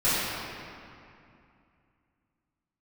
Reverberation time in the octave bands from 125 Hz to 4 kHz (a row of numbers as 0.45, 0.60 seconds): 3.1, 3.0, 2.5, 2.6, 2.3, 1.7 seconds